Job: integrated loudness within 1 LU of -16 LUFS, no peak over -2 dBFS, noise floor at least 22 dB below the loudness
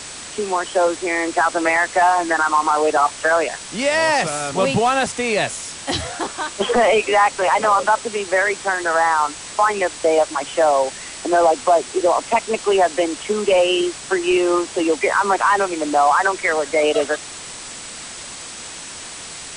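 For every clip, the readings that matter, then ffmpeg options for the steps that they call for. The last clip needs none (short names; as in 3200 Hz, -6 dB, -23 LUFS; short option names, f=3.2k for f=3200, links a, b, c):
steady tone 7800 Hz; tone level -40 dBFS; noise floor -34 dBFS; noise floor target -41 dBFS; loudness -18.5 LUFS; peak -6.0 dBFS; loudness target -16.0 LUFS
-> -af "bandreject=f=7.8k:w=30"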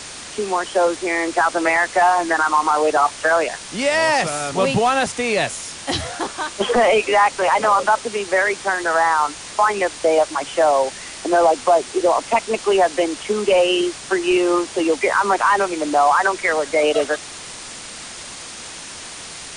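steady tone none; noise floor -35 dBFS; noise floor target -41 dBFS
-> -af "afftdn=nr=6:nf=-35"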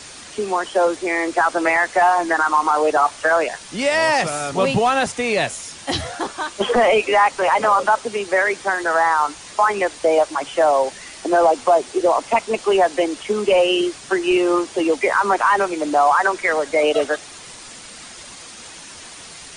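noise floor -39 dBFS; noise floor target -41 dBFS
-> -af "afftdn=nr=6:nf=-39"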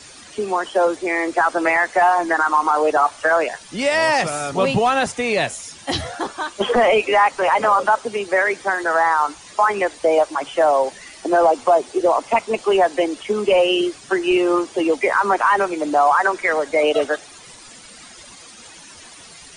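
noise floor -42 dBFS; loudness -18.5 LUFS; peak -6.5 dBFS; loudness target -16.0 LUFS
-> -af "volume=2.5dB"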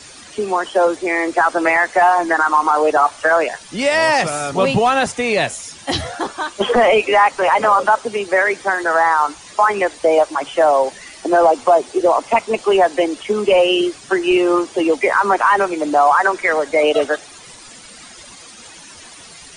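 loudness -16.0 LUFS; peak -4.0 dBFS; noise floor -40 dBFS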